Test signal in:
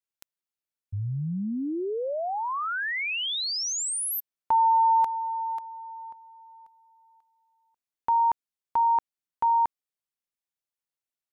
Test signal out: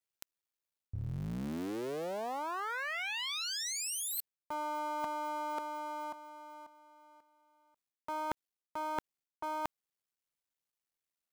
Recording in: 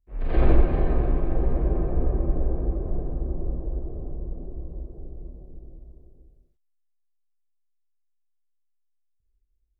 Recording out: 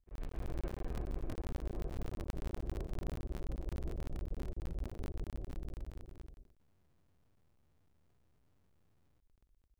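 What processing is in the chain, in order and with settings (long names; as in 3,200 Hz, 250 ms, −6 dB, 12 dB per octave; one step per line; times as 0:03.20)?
sub-harmonics by changed cycles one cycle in 3, muted
reversed playback
downward compressor 16 to 1, threshold −36 dBFS
reversed playback
level +1.5 dB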